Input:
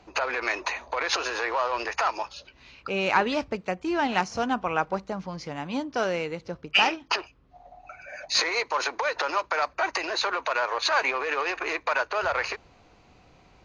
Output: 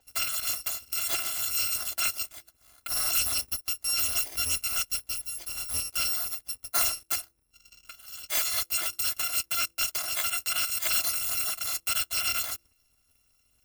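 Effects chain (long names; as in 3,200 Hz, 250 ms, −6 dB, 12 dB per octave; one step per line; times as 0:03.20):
samples in bit-reversed order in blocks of 256 samples
leveller curve on the samples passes 2
hum removal 168.9 Hz, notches 3
level −8.5 dB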